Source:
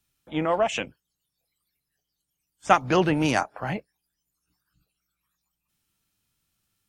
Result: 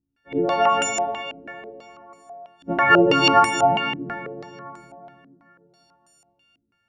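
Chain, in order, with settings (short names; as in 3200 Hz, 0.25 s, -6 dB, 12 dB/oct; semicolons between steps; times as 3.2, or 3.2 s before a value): frequency quantiser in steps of 4 st; plate-style reverb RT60 3.4 s, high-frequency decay 0.6×, DRR 2 dB; stepped low-pass 6.1 Hz 290–7600 Hz; gain -1 dB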